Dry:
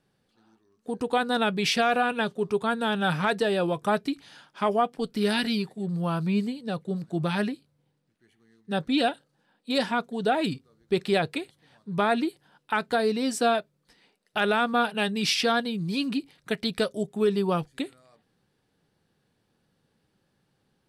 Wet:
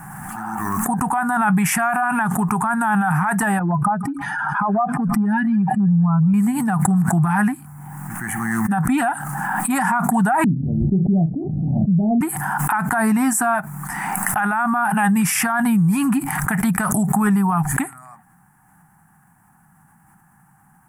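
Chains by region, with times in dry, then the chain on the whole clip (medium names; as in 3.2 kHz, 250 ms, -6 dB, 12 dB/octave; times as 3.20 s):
3.59–6.34 s: spectral contrast enhancement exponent 2 + compression, threshold -29 dBFS + feedback echo behind a high-pass 160 ms, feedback 54%, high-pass 1.9 kHz, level -22.5 dB
10.44–12.21 s: steep low-pass 590 Hz 72 dB/octave + doubling 37 ms -10.5 dB
whole clip: FFT filter 110 Hz 0 dB, 170 Hz +7 dB, 330 Hz -9 dB, 510 Hz -28 dB, 780 Hz +12 dB, 1.8 kHz +5 dB, 4 kHz -28 dB, 7.3 kHz +5 dB, 11 kHz +12 dB; loudness maximiser +23 dB; swell ahead of each attack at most 21 dB/s; trim -10.5 dB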